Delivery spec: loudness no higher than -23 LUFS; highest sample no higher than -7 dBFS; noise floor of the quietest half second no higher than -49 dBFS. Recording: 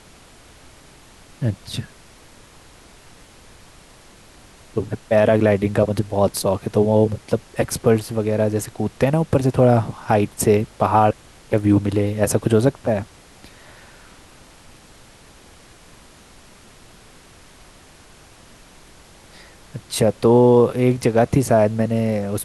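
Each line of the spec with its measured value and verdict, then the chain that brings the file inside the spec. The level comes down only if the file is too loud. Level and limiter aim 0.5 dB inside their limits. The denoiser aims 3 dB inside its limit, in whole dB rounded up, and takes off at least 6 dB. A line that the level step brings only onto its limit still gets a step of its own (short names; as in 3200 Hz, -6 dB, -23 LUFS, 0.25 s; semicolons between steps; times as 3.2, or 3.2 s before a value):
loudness -19.0 LUFS: fail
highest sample -3.0 dBFS: fail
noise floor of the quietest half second -47 dBFS: fail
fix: gain -4.5 dB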